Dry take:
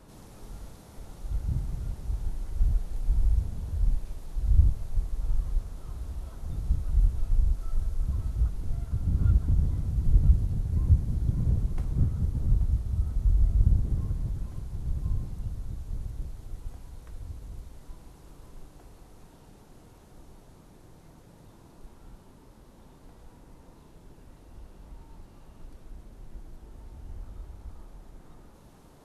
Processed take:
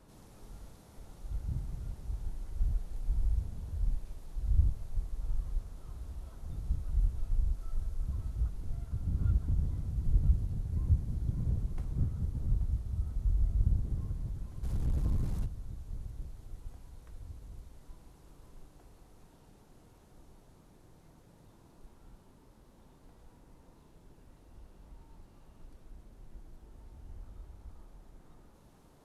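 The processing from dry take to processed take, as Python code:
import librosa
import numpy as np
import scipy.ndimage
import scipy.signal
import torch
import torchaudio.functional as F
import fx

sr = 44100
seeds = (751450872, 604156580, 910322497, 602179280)

y = fx.leveller(x, sr, passes=3, at=(14.63, 15.46))
y = y * 10.0 ** (-6.5 / 20.0)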